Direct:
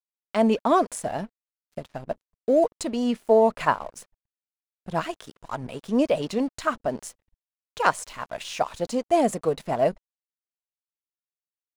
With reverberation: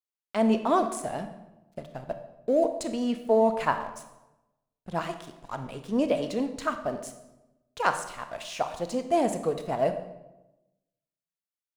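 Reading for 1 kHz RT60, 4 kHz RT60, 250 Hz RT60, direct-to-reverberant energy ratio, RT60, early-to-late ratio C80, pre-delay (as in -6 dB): 0.95 s, 0.70 s, 1.2 s, 7.5 dB, 1.0 s, 12.0 dB, 24 ms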